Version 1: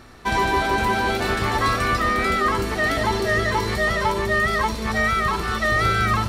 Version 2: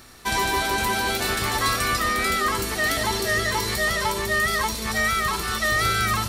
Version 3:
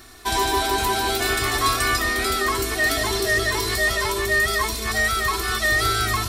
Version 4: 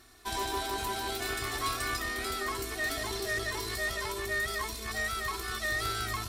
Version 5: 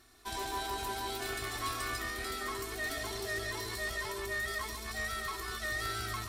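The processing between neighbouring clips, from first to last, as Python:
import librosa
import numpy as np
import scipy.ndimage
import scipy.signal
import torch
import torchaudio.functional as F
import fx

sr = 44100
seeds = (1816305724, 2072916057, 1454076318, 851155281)

y1 = scipy.signal.lfilter([1.0, -0.8], [1.0], x)
y1 = F.gain(torch.from_numpy(y1), 9.0).numpy()
y2 = y1 + 0.71 * np.pad(y1, (int(2.8 * sr / 1000.0), 0))[:len(y1)]
y3 = fx.tube_stage(y2, sr, drive_db=11.0, bias=0.6)
y3 = F.gain(torch.from_numpy(y3), -9.0).numpy()
y4 = y3 + 10.0 ** (-7.5 / 20.0) * np.pad(y3, (int(137 * sr / 1000.0), 0))[:len(y3)]
y4 = F.gain(torch.from_numpy(y4), -4.5).numpy()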